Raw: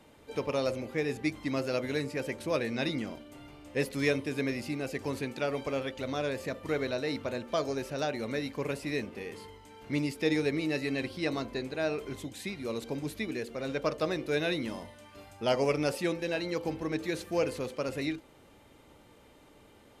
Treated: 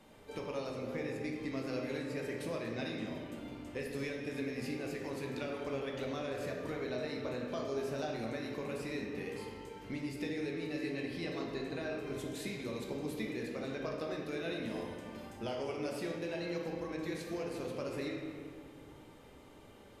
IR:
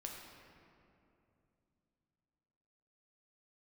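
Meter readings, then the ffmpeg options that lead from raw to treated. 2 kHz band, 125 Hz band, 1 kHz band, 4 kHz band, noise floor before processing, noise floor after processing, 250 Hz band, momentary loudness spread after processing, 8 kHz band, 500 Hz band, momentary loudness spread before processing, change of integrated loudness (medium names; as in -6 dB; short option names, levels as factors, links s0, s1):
-7.5 dB, -6.0 dB, -6.5 dB, -7.5 dB, -58 dBFS, -56 dBFS, -5.5 dB, 7 LU, -7.0 dB, -6.5 dB, 10 LU, -6.5 dB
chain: -filter_complex "[0:a]acompressor=threshold=0.0158:ratio=6[s0];[1:a]atrim=start_sample=2205,asetrate=57330,aresample=44100[s1];[s0][s1]afir=irnorm=-1:irlink=0,volume=1.78"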